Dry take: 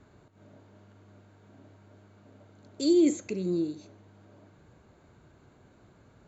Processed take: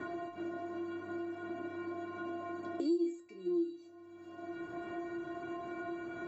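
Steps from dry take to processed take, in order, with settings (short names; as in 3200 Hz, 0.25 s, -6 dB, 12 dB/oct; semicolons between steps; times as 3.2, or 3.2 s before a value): metallic resonator 340 Hz, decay 0.45 s, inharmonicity 0.008; three-band squash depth 100%; gain +13 dB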